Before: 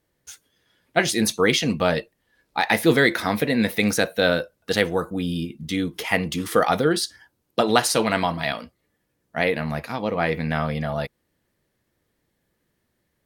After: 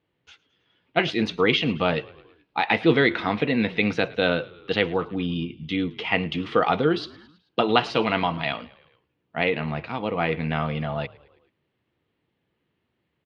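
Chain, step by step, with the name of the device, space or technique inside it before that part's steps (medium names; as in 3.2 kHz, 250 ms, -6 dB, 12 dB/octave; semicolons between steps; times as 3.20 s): frequency-shifting delay pedal into a guitar cabinet (frequency-shifting echo 108 ms, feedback 58%, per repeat -41 Hz, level -22 dB; cabinet simulation 87–3500 Hz, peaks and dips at 210 Hz -3 dB, 580 Hz -5 dB, 1.7 kHz -6 dB, 2.8 kHz +5 dB)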